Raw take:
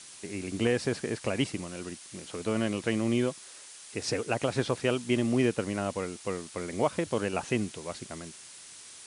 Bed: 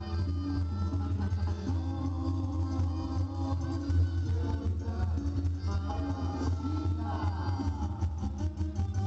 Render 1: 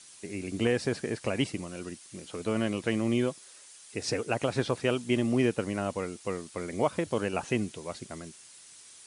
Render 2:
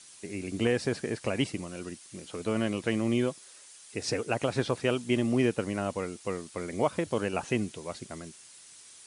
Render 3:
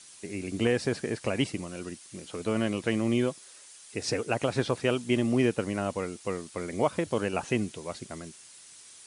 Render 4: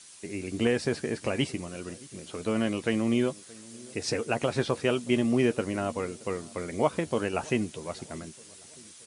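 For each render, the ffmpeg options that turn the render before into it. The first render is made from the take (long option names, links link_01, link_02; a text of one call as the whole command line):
ffmpeg -i in.wav -af "afftdn=noise_reduction=6:noise_floor=-49" out.wav
ffmpeg -i in.wav -af anull out.wav
ffmpeg -i in.wav -af "volume=1dB" out.wav
ffmpeg -i in.wav -filter_complex "[0:a]asplit=2[link_01][link_02];[link_02]adelay=13,volume=-11.5dB[link_03];[link_01][link_03]amix=inputs=2:normalize=0,asplit=2[link_04][link_05];[link_05]adelay=625,lowpass=frequency=1100:poles=1,volume=-22dB,asplit=2[link_06][link_07];[link_07]adelay=625,lowpass=frequency=1100:poles=1,volume=0.53,asplit=2[link_08][link_09];[link_09]adelay=625,lowpass=frequency=1100:poles=1,volume=0.53,asplit=2[link_10][link_11];[link_11]adelay=625,lowpass=frequency=1100:poles=1,volume=0.53[link_12];[link_04][link_06][link_08][link_10][link_12]amix=inputs=5:normalize=0" out.wav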